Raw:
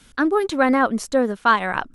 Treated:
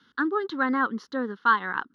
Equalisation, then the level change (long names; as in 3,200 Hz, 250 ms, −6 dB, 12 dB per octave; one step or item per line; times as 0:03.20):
band-pass filter 260–3,200 Hz
phaser with its sweep stopped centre 2,400 Hz, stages 6
−2.5 dB